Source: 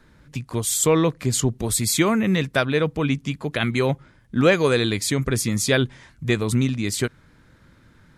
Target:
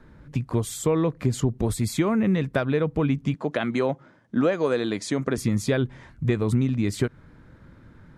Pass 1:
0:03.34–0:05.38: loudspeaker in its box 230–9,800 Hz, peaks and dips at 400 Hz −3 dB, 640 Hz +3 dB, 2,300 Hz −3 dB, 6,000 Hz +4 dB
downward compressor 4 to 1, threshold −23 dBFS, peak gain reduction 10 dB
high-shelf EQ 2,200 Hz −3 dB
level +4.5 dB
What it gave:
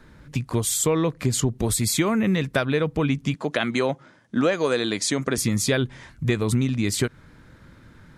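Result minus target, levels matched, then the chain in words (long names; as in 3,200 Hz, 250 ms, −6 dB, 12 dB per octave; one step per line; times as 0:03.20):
4,000 Hz band +7.0 dB
0:03.34–0:05.38: loudspeaker in its box 230–9,800 Hz, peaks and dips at 400 Hz −3 dB, 640 Hz +3 dB, 2,300 Hz −3 dB, 6,000 Hz +4 dB
downward compressor 4 to 1, threshold −23 dBFS, peak gain reduction 10 dB
high-shelf EQ 2,200 Hz −14.5 dB
level +4.5 dB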